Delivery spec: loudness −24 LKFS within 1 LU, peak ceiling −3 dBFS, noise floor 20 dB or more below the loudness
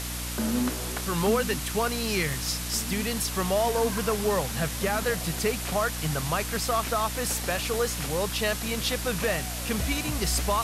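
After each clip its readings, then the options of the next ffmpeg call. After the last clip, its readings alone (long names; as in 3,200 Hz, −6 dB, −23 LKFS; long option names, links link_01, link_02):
mains hum 60 Hz; hum harmonics up to 300 Hz; level of the hum −34 dBFS; background noise floor −33 dBFS; target noise floor −47 dBFS; integrated loudness −27.0 LKFS; sample peak −13.0 dBFS; target loudness −24.0 LKFS
→ -af "bandreject=frequency=60:width_type=h:width=6,bandreject=frequency=120:width_type=h:width=6,bandreject=frequency=180:width_type=h:width=6,bandreject=frequency=240:width_type=h:width=6,bandreject=frequency=300:width_type=h:width=6"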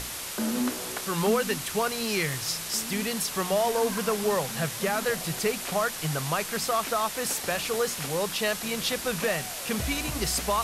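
mains hum none found; background noise floor −36 dBFS; target noise floor −48 dBFS
→ -af "afftdn=noise_reduction=12:noise_floor=-36"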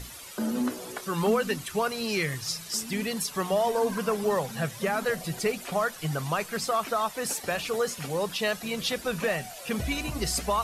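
background noise floor −43 dBFS; target noise floor −49 dBFS
→ -af "afftdn=noise_reduction=6:noise_floor=-43"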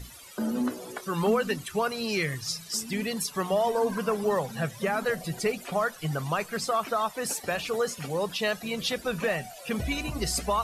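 background noise floor −46 dBFS; target noise floor −49 dBFS
→ -af "afftdn=noise_reduction=6:noise_floor=-46"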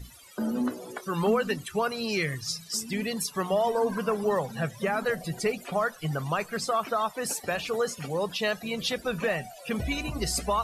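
background noise floor −49 dBFS; integrated loudness −29.0 LKFS; sample peak −14.5 dBFS; target loudness −24.0 LKFS
→ -af "volume=5dB"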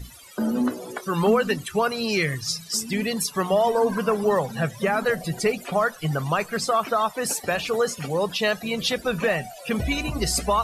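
integrated loudness −24.0 LKFS; sample peak −9.5 dBFS; background noise floor −44 dBFS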